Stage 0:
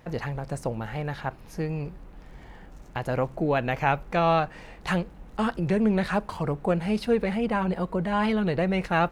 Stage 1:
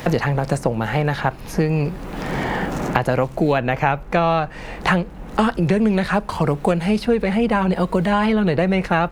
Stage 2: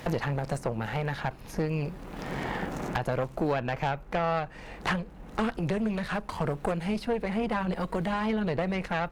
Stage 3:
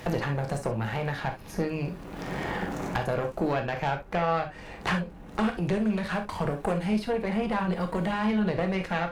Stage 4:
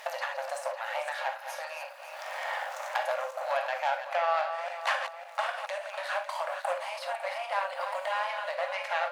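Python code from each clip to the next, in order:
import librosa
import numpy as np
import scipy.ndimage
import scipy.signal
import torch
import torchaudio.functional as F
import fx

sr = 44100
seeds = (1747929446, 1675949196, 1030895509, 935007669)

y1 = fx.band_squash(x, sr, depth_pct=100)
y1 = y1 * librosa.db_to_amplitude(6.5)
y2 = fx.tube_stage(y1, sr, drive_db=14.0, bias=0.8)
y2 = y2 * librosa.db_to_amplitude(-5.5)
y3 = fx.rev_gated(y2, sr, seeds[0], gate_ms=90, shape='flat', drr_db=5.0)
y4 = fx.reverse_delay_fb(y3, sr, ms=276, feedback_pct=57, wet_db=-8)
y4 = fx.brickwall_highpass(y4, sr, low_hz=520.0)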